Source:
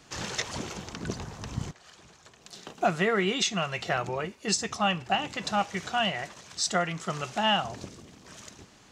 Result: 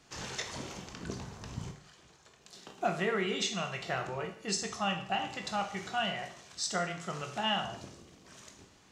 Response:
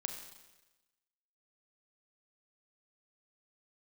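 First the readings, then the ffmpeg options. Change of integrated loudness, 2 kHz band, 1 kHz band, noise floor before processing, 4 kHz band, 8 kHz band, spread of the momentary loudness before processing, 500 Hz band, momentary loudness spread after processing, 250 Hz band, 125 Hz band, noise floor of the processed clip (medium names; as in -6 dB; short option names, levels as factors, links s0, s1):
-5.5 dB, -5.5 dB, -6.0 dB, -56 dBFS, -5.5 dB, -5.5 dB, 20 LU, -5.5 dB, 20 LU, -6.0 dB, -6.0 dB, -61 dBFS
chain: -filter_complex "[1:a]atrim=start_sample=2205,asetrate=83790,aresample=44100[s0];[0:a][s0]afir=irnorm=-1:irlink=0"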